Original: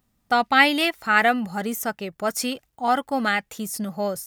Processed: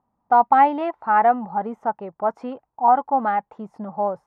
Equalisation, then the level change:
low-pass with resonance 920 Hz, resonance Q 4.9
low-shelf EQ 89 Hz −12 dB
−2.5 dB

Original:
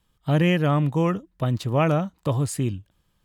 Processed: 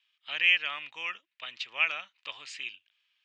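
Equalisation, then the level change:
high-pass with resonance 2,500 Hz, resonance Q 3.4
Bessel low-pass filter 3,700 Hz, order 8
0.0 dB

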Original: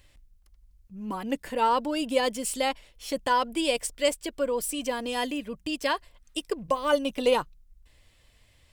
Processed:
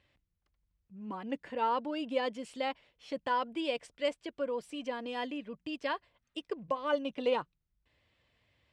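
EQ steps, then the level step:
band-pass filter 100–3,300 Hz
−7.0 dB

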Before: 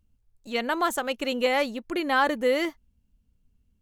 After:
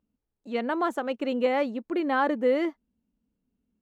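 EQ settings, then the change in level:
high-pass filter 58 Hz 6 dB per octave
low-pass filter 1,100 Hz 6 dB per octave
low shelf with overshoot 160 Hz −12 dB, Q 1.5
0.0 dB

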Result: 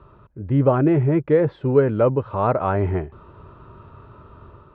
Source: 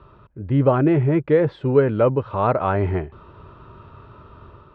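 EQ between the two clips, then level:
high-shelf EQ 3,200 Hz −10 dB
0.0 dB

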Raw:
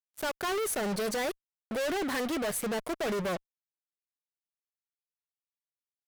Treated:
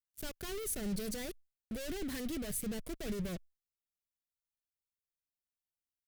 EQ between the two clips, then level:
guitar amp tone stack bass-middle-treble 10-0-1
high-shelf EQ 11,000 Hz +6.5 dB
+13.5 dB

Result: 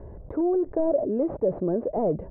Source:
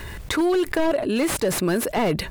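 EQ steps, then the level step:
transistor ladder low-pass 710 Hz, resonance 45%
+3.0 dB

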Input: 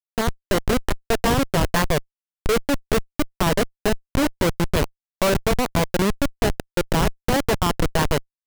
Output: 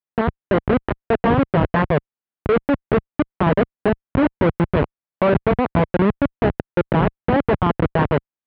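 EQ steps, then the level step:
high-pass filter 79 Hz 12 dB per octave
low-pass filter 3,000 Hz 12 dB per octave
high-frequency loss of the air 470 metres
+5.0 dB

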